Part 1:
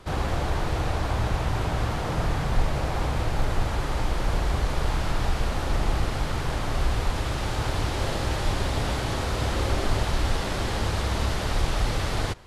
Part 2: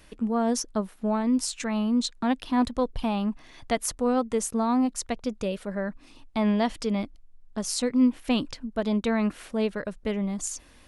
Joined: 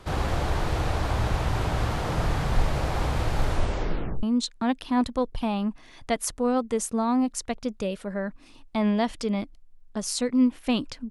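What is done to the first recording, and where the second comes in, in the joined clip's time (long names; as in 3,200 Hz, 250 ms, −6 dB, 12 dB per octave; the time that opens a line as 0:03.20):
part 1
0:03.48: tape stop 0.75 s
0:04.23: continue with part 2 from 0:01.84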